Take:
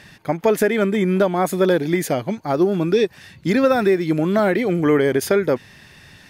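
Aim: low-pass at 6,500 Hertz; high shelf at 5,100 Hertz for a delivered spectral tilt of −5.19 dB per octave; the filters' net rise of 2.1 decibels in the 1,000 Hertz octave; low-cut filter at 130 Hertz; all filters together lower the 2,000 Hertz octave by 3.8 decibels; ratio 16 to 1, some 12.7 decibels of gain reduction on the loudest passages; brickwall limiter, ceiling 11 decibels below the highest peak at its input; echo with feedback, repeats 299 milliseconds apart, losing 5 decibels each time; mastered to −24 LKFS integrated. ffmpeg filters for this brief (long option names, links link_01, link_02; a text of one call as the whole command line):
ffmpeg -i in.wav -af "highpass=130,lowpass=6500,equalizer=frequency=1000:width_type=o:gain=5,equalizer=frequency=2000:width_type=o:gain=-6.5,highshelf=frequency=5100:gain=-3.5,acompressor=threshold=-24dB:ratio=16,alimiter=limit=-23dB:level=0:latency=1,aecho=1:1:299|598|897|1196|1495|1794|2093:0.562|0.315|0.176|0.0988|0.0553|0.031|0.0173,volume=7dB" out.wav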